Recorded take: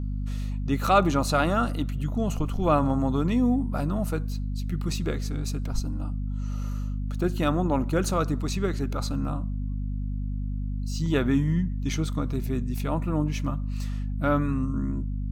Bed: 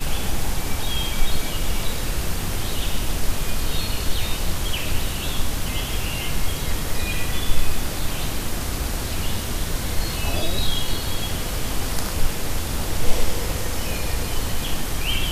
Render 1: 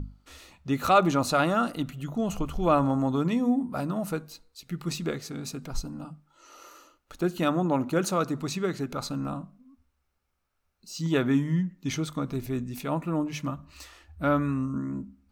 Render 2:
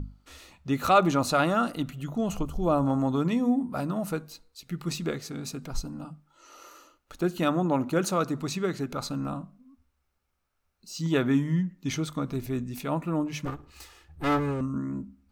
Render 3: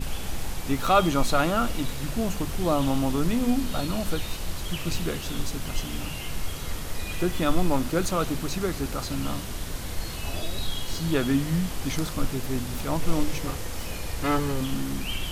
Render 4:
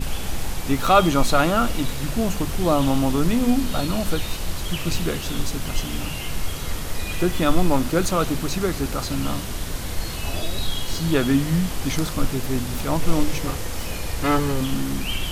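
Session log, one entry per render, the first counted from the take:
notches 50/100/150/200/250 Hz
2.43–2.87 bell 2100 Hz -12 dB 1.6 oct; 13.45–14.61 minimum comb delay 2.4 ms
add bed -8 dB
gain +4.5 dB

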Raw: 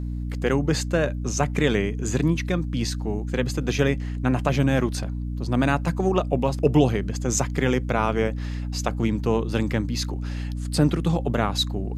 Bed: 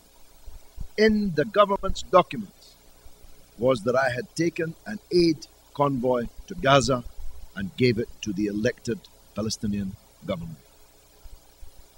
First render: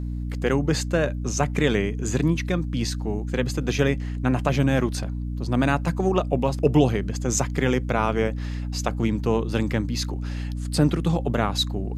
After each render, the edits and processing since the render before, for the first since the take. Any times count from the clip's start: nothing audible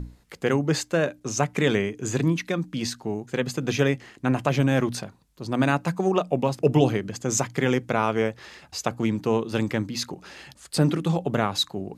notches 60/120/180/240/300 Hz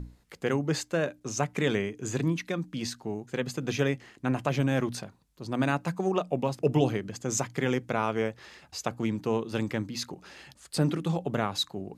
gain -5 dB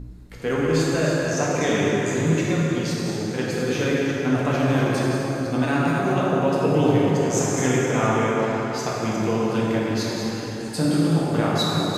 reverse delay 0.187 s, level -7 dB; plate-style reverb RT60 4.4 s, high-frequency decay 0.55×, DRR -6.5 dB

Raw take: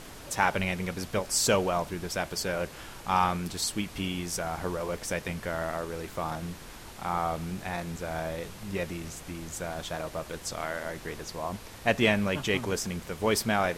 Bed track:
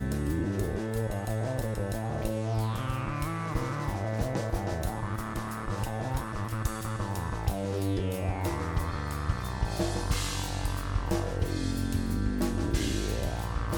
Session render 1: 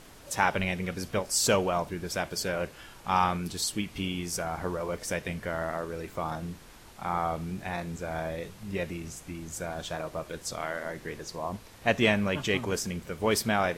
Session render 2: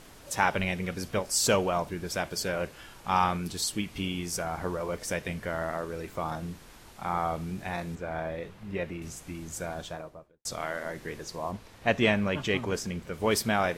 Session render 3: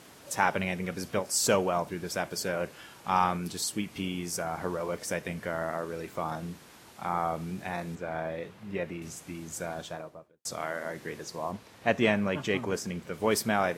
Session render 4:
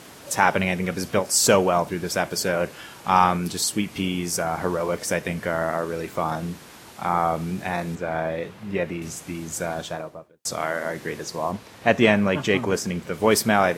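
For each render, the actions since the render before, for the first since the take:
noise print and reduce 6 dB
7.95–9.02 tone controls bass -2 dB, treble -12 dB; 9.64–10.45 studio fade out; 11.51–13.14 high shelf 6600 Hz -8 dB
HPF 120 Hz 12 dB/oct; dynamic EQ 3400 Hz, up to -4 dB, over -43 dBFS, Q 1.1
gain +8 dB; limiter -3 dBFS, peak gain reduction 1.5 dB

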